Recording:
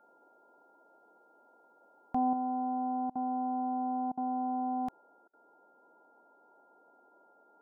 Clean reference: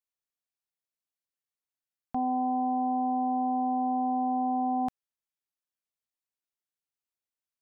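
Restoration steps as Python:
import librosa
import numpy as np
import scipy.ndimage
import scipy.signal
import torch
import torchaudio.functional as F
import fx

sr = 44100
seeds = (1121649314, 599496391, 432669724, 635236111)

y = fx.notch(x, sr, hz=1400.0, q=30.0)
y = fx.fix_interpolate(y, sr, at_s=(3.1, 4.12, 5.28), length_ms=53.0)
y = fx.noise_reduce(y, sr, print_start_s=5.31, print_end_s=5.81, reduce_db=30.0)
y = fx.gain(y, sr, db=fx.steps((0.0, 0.0), (2.33, 5.0)))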